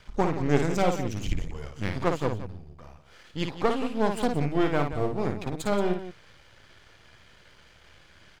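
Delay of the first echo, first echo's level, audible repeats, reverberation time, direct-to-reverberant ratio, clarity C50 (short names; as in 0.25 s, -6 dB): 55 ms, -6.0 dB, 2, none, none, none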